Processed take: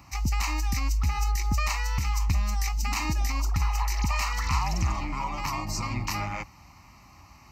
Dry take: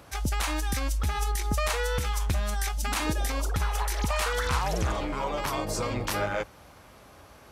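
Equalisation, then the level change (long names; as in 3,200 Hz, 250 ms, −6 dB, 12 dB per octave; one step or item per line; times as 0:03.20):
parametric band 620 Hz −9 dB 0.56 octaves
phaser with its sweep stopped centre 2,300 Hz, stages 8
+3.0 dB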